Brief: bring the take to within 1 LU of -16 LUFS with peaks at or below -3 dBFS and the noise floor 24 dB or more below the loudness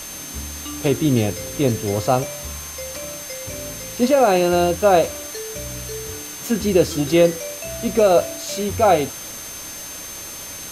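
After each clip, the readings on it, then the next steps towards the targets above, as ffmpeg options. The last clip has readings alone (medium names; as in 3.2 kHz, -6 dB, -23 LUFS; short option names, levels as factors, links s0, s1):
steady tone 6.3 kHz; tone level -35 dBFS; noise floor -34 dBFS; noise floor target -45 dBFS; loudness -21.0 LUFS; peak level -3.0 dBFS; loudness target -16.0 LUFS
-> -af "bandreject=f=6300:w=30"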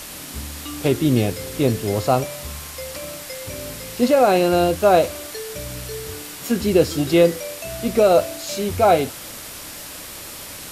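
steady tone not found; noise floor -36 dBFS; noise floor target -44 dBFS
-> -af "afftdn=nr=8:nf=-36"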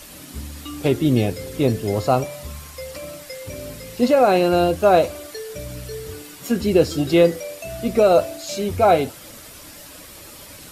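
noise floor -41 dBFS; noise floor target -43 dBFS
-> -af "afftdn=nr=6:nf=-41"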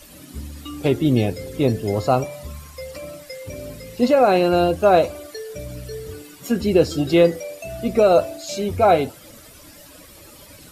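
noise floor -45 dBFS; loudness -19.0 LUFS; peak level -3.5 dBFS; loudness target -16.0 LUFS
-> -af "volume=1.41,alimiter=limit=0.708:level=0:latency=1"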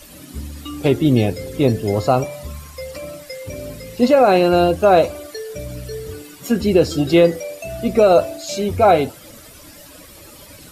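loudness -16.5 LUFS; peak level -3.0 dBFS; noise floor -42 dBFS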